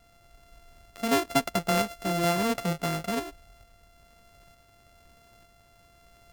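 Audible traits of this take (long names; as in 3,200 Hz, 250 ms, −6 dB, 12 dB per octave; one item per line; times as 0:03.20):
a buzz of ramps at a fixed pitch in blocks of 64 samples
tremolo saw up 1.1 Hz, depth 35%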